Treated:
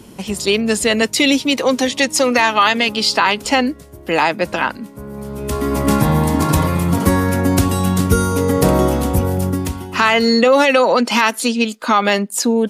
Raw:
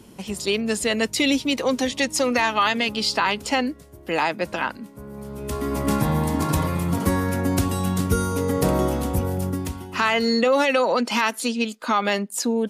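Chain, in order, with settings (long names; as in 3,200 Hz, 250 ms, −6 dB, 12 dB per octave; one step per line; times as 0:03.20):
0:01.02–0:03.45: high-pass filter 160 Hz 6 dB per octave
level +7 dB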